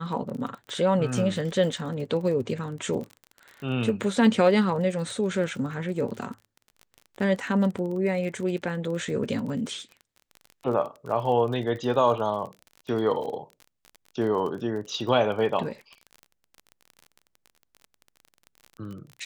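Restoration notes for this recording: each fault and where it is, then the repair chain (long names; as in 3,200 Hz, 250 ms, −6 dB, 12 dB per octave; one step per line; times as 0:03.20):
surface crackle 31 per second −34 dBFS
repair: click removal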